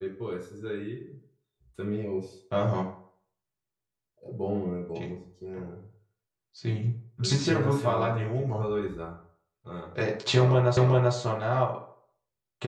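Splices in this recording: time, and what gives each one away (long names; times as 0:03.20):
0:10.77: the same again, the last 0.39 s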